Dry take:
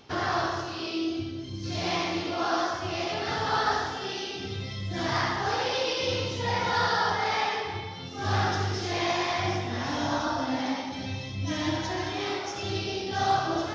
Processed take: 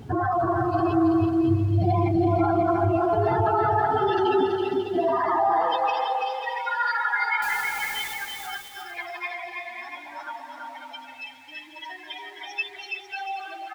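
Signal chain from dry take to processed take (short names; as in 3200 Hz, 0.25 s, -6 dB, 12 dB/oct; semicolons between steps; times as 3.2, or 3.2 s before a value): spectral contrast raised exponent 3.2; added noise brown -50 dBFS; high-pass sweep 110 Hz -> 2100 Hz, 3.45–6.34; 7.42–8.14 requantised 8-bit, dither triangular; echo 0.369 s -13 dB; limiter -25.5 dBFS, peak gain reduction 10 dB; bouncing-ball echo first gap 0.33 s, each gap 0.65×, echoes 5; gain +8.5 dB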